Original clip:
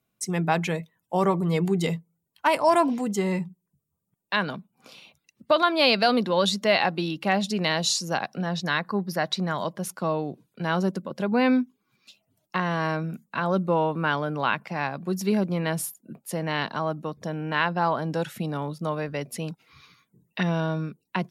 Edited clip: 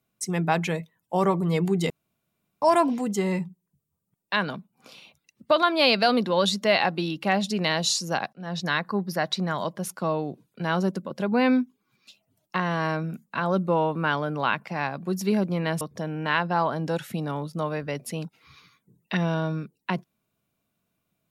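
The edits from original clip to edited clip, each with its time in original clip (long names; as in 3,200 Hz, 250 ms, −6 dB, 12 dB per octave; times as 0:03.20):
0:01.90–0:02.62: fill with room tone
0:08.33–0:08.60: fade in
0:15.81–0:17.07: remove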